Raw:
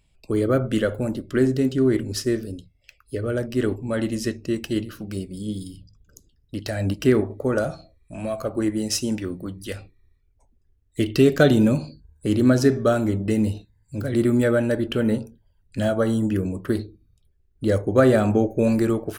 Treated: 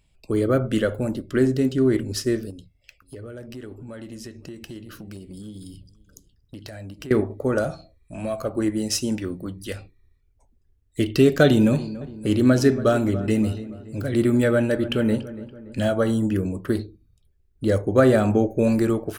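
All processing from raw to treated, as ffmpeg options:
-filter_complex "[0:a]asettb=1/sr,asplit=3[s0][s1][s2];[s0]atrim=end=2.504[s3];[s1]atrim=start=2.5:end=7.11,asetpts=PTS-STARTPTS,afade=t=in:d=0.004:c=qsin,afade=t=out:st=4.606:d=0.004:c=qsin,acompressor=threshold=0.0178:ratio=6:attack=3.2:release=140:knee=1:detection=peak,aecho=1:1:517:0.0668,atrim=end_sample=203301[s4];[s2]atrim=start=7.106[s5];[s3][s4]acrossfade=d=0.004:c1=hsin:c2=qsin[s6];[s6][s5]acrossfade=d=0.004:c1=qsin:c2=hsin,asettb=1/sr,asplit=3[s7][s8][s9];[s7]atrim=end=11.444[s10];[s8]atrim=start=11.44:end=16.11,asetpts=PTS-STARTPTS,afade=t=in:d=0.004:c=qsin,afade=t=out:st=4.666:d=0.004:c=qsin,equalizer=f=2700:t=o:w=0.83:g=3,asplit=2[s11][s12];[s12]adelay=285,lowpass=f=2000:p=1,volume=0.178,asplit=2[s13][s14];[s14]adelay=285,lowpass=f=2000:p=1,volume=0.51,asplit=2[s15][s16];[s16]adelay=285,lowpass=f=2000:p=1,volume=0.51,asplit=2[s17][s18];[s18]adelay=285,lowpass=f=2000:p=1,volume=0.51,asplit=2[s19][s20];[s20]adelay=285,lowpass=f=2000:p=1,volume=0.51[s21];[s11][s13][s15][s17][s19][s21]amix=inputs=6:normalize=0,atrim=end_sample=205947[s22];[s9]atrim=start=16.106[s23];[s10][s22]acrossfade=d=0.004:c1=hsin:c2=qsin[s24];[s24][s23]acrossfade=d=0.004:c1=qsin:c2=hsin"

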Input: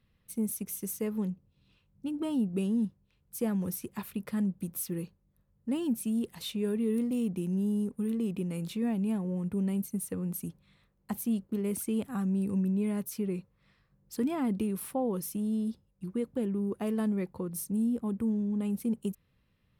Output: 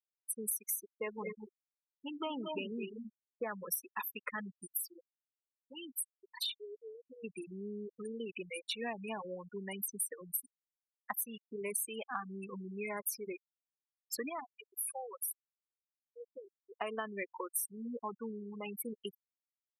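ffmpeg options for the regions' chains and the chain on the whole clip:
-filter_complex "[0:a]asettb=1/sr,asplit=3[s0][s1][s2];[s0]atrim=end=0.844[s3];[s1]atrim=start=0.84:end=3.55,asetpts=PTS-STARTPTS,afade=t=in:d=0.004:c=qsin,afade=t=out:st=2.706:d=0.004:c=qsin,lowpass=3000,aecho=1:1:146|213|237|255:0.106|0.335|0.355|0.316,atrim=end_sample=119511[s4];[s2]atrim=start=3.546[s5];[s3][s4]acrossfade=d=0.004:c1=hsin:c2=qsin[s6];[s6][s5]acrossfade=d=0.004:c1=qsin:c2=hsin,asettb=1/sr,asplit=3[s7][s8][s9];[s7]atrim=end=4.774[s10];[s8]atrim=start=4.77:end=7.24,asetpts=PTS-STARTPTS,afade=t=in:d=0.004:c=qsin,afade=t=out:st=2.466:d=0.004:c=qsin,asubboost=boost=6:cutoff=52,acompressor=threshold=0.0126:ratio=5:attack=3.2:release=140:knee=1:detection=peak[s11];[s9]atrim=start=7.236[s12];[s10][s11]acrossfade=d=0.004:c1=hsin:c2=qsin[s13];[s13][s12]acrossfade=d=0.004:c1=qsin:c2=hsin,asettb=1/sr,asplit=3[s14][s15][s16];[s14]atrim=end=14.294[s17];[s15]atrim=start=14.29:end=16.77,asetpts=PTS-STARTPTS,afade=t=in:d=0.004:c=qsin,afade=t=out:st=2.476:d=0.004:c=qsin,equalizer=f=150:t=o:w=0.21:g=14.5,acompressor=threshold=0.0126:ratio=8:attack=3.2:release=140:knee=1:detection=peak[s18];[s16]atrim=start=16.766[s19];[s17][s18]acrossfade=d=0.004:c1=hsin:c2=qsin[s20];[s20][s19]acrossfade=d=0.004:c1=qsin:c2=hsin,highpass=1000,afftfilt=real='re*gte(hypot(re,im),0.00891)':imag='im*gte(hypot(re,im),0.00891)':win_size=1024:overlap=0.75,acompressor=threshold=0.00501:ratio=6,volume=3.98"

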